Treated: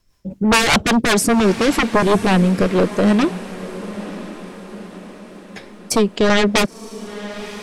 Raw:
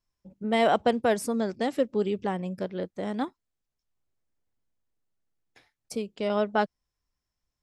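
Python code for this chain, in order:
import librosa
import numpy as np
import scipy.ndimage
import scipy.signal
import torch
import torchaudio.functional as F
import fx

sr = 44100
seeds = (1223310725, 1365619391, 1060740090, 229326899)

y = fx.fold_sine(x, sr, drive_db=17, ceiling_db=-10.0)
y = fx.rotary(y, sr, hz=5.0)
y = fx.echo_diffused(y, sr, ms=999, feedback_pct=50, wet_db=-14.5)
y = y * 10.0 ** (1.5 / 20.0)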